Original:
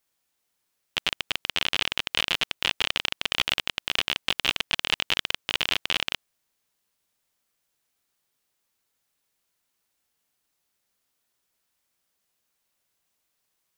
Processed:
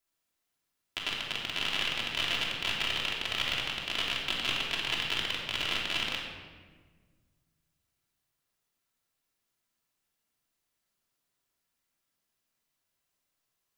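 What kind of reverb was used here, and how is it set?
shoebox room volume 1500 m³, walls mixed, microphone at 3 m; gain -9.5 dB

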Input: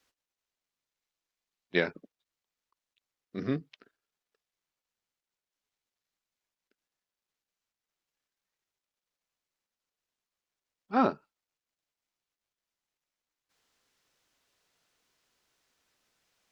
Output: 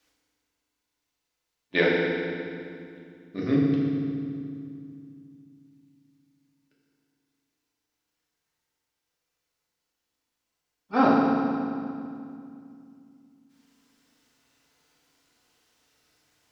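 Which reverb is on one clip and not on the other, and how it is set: FDN reverb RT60 2.4 s, low-frequency decay 1.5×, high-frequency decay 0.85×, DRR -5 dB; gain +1.5 dB

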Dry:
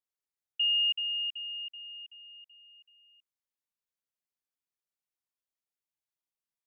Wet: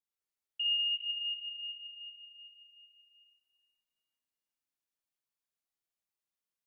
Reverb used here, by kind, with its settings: Schroeder reverb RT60 1.9 s, combs from 28 ms, DRR -4 dB; gain -6 dB

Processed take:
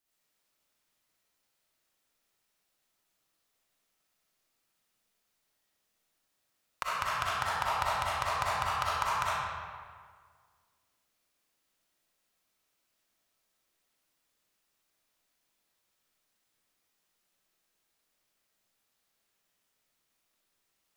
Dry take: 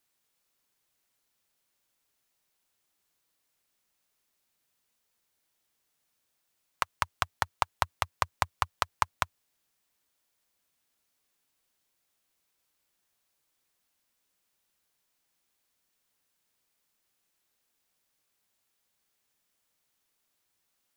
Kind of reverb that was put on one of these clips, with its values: digital reverb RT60 1.8 s, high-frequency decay 0.7×, pre-delay 20 ms, DRR -8.5 dB; gain -7.5 dB

